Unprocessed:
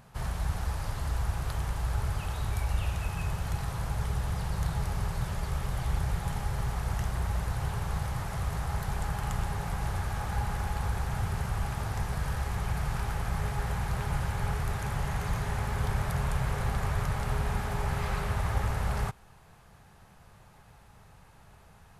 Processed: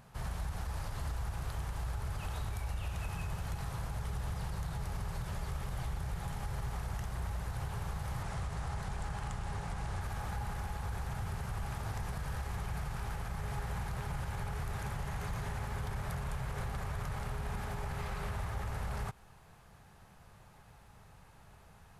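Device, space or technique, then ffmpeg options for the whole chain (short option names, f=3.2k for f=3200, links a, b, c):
clipper into limiter: -filter_complex "[0:a]asettb=1/sr,asplit=3[a][b][c];[a]atrim=end=8.234[d];[b]atrim=start=8.23:end=10.01,asetpts=PTS-STARTPTS,afade=t=in:d=0.004:c=qsin,afade=t=out:st=1.776:d=0.004:c=qsin,lowpass=f=10k:w=0.5412,lowpass=f=10k:w=1.3066[e];[c]atrim=start=10.006[f];[d][e]acrossfade=d=0.004:c1=hsin:c2=qsin[g];[g][f]acrossfade=d=0.004:c1=qsin:c2=hsin,asoftclip=type=hard:threshold=-19dB,alimiter=level_in=3dB:limit=-24dB:level=0:latency=1:release=87,volume=-3dB,volume=-2.5dB"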